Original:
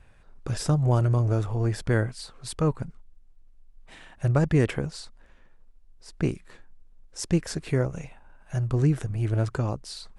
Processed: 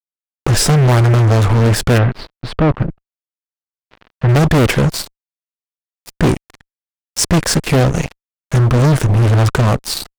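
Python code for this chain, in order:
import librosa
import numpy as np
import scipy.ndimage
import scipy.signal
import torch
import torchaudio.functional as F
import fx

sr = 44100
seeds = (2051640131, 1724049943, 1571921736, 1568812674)

y = fx.fuzz(x, sr, gain_db=33.0, gate_db=-40.0)
y = fx.air_absorb(y, sr, metres=340.0, at=(1.98, 4.29))
y = y * librosa.db_to_amplitude(4.5)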